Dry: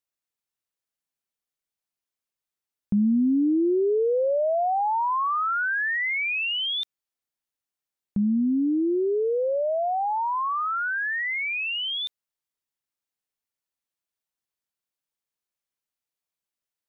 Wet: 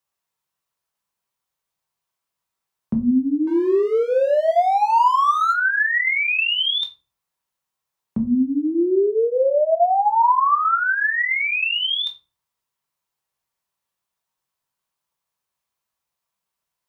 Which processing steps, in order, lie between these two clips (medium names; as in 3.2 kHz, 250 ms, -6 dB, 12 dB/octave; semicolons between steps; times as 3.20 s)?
fifteen-band graphic EQ 100 Hz +4 dB, 250 Hz -3 dB, 1 kHz +9 dB; compression 2.5:1, threshold -24 dBFS, peak gain reduction 6.5 dB; 3.47–5.53 s: hysteresis with a dead band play -31.5 dBFS; frequency shift +22 Hz; simulated room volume 180 m³, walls furnished, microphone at 1.1 m; trim +4.5 dB